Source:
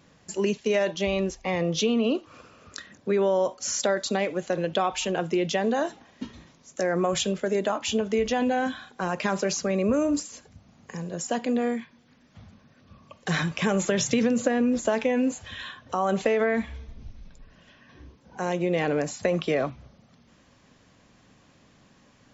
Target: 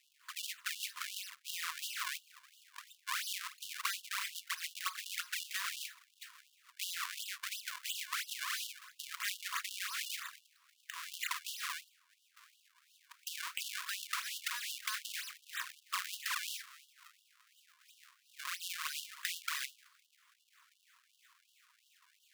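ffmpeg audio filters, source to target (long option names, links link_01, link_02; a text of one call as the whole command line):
ffmpeg -i in.wav -af "acompressor=threshold=-29dB:ratio=2.5,acrusher=samples=39:mix=1:aa=0.000001:lfo=1:lforange=62.4:lforate=3,afftfilt=real='re*gte(b*sr/1024,930*pow(2800/930,0.5+0.5*sin(2*PI*2.8*pts/sr)))':imag='im*gte(b*sr/1024,930*pow(2800/930,0.5+0.5*sin(2*PI*2.8*pts/sr)))':win_size=1024:overlap=0.75" out.wav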